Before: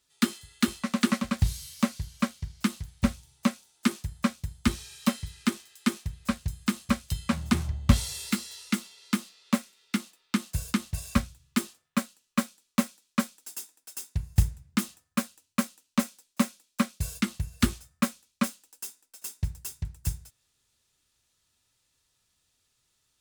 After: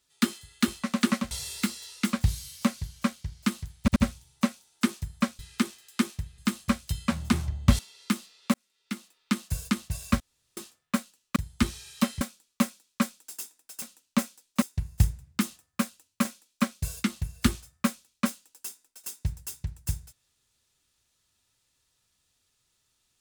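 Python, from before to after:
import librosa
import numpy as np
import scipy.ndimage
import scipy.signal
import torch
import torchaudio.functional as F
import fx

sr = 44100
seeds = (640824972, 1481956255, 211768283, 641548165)

y = fx.edit(x, sr, fx.stutter(start_s=2.98, slice_s=0.08, count=3),
    fx.move(start_s=4.41, length_s=0.85, to_s=12.39),
    fx.cut(start_s=6.25, length_s=0.34),
    fx.move(start_s=8.0, length_s=0.82, to_s=1.31),
    fx.fade_in_span(start_s=9.57, length_s=0.78),
    fx.room_tone_fill(start_s=11.23, length_s=0.37),
    fx.move(start_s=15.63, length_s=0.8, to_s=14.0), tone=tone)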